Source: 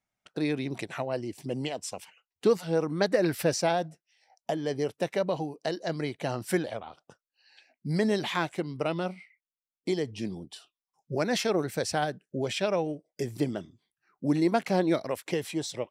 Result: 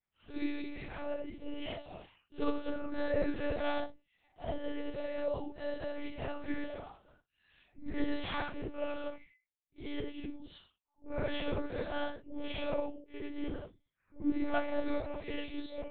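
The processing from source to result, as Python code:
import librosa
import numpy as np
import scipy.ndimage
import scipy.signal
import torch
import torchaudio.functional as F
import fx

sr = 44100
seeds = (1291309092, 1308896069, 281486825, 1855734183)

y = fx.phase_scramble(x, sr, seeds[0], window_ms=200)
y = fx.lpc_monotone(y, sr, seeds[1], pitch_hz=290.0, order=8)
y = y * librosa.db_to_amplitude(-6.0)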